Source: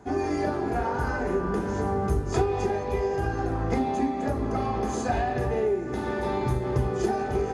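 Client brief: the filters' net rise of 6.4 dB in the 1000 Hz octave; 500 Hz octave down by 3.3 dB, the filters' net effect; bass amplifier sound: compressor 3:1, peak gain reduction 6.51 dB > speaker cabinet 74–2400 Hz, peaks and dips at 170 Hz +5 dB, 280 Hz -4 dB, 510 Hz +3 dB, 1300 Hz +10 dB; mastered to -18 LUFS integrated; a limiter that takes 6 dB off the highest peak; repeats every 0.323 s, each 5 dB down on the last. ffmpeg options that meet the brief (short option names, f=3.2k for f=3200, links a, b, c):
-af "equalizer=f=500:t=o:g=-7.5,equalizer=f=1k:t=o:g=9,alimiter=limit=-18dB:level=0:latency=1,aecho=1:1:323|646|969|1292|1615|1938|2261:0.562|0.315|0.176|0.0988|0.0553|0.031|0.0173,acompressor=threshold=-29dB:ratio=3,highpass=f=74:w=0.5412,highpass=f=74:w=1.3066,equalizer=f=170:t=q:w=4:g=5,equalizer=f=280:t=q:w=4:g=-4,equalizer=f=510:t=q:w=4:g=3,equalizer=f=1.3k:t=q:w=4:g=10,lowpass=f=2.4k:w=0.5412,lowpass=f=2.4k:w=1.3066,volume=12dB"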